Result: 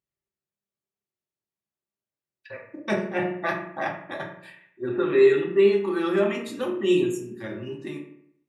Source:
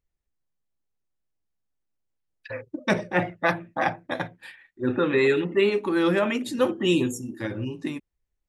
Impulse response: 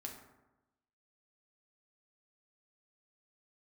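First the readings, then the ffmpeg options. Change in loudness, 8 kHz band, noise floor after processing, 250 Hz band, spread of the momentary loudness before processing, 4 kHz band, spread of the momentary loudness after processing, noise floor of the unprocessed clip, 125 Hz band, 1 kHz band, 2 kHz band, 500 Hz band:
+1.0 dB, n/a, under -85 dBFS, -1.5 dB, 13 LU, -4.5 dB, 19 LU, -81 dBFS, -4.5 dB, -3.5 dB, -3.5 dB, +2.5 dB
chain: -filter_complex "[0:a]highpass=120[a];[1:a]atrim=start_sample=2205,asetrate=66150,aresample=44100[b];[a][b]afir=irnorm=-1:irlink=0,volume=3dB"

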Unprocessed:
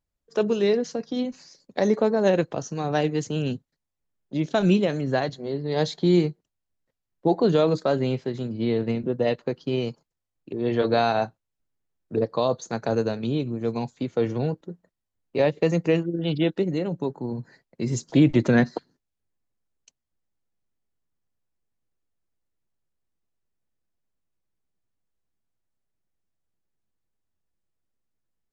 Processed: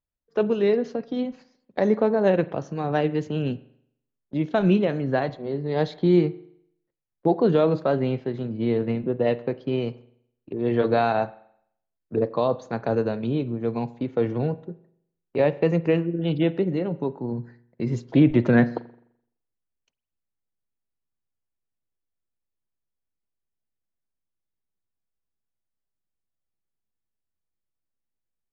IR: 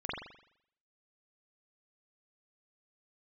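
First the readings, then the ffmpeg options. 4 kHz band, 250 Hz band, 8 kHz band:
-5.5 dB, +0.5 dB, n/a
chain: -filter_complex "[0:a]lowpass=2.7k,agate=range=-8dB:threshold=-44dB:ratio=16:detection=peak,asplit=2[a][b];[1:a]atrim=start_sample=2205[c];[b][c]afir=irnorm=-1:irlink=0,volume=-20.5dB[d];[a][d]amix=inputs=2:normalize=0"

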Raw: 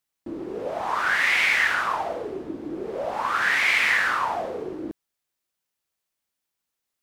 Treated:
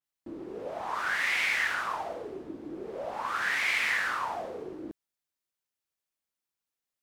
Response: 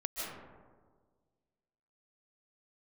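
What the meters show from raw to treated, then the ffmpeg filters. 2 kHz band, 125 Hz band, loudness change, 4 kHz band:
-7.5 dB, -7.5 dB, -7.5 dB, -6.5 dB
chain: -af "adynamicequalizer=threshold=0.02:dfrequency=4300:dqfactor=0.7:tfrequency=4300:tqfactor=0.7:attack=5:release=100:ratio=0.375:range=1.5:mode=boostabove:tftype=highshelf,volume=-7.5dB"

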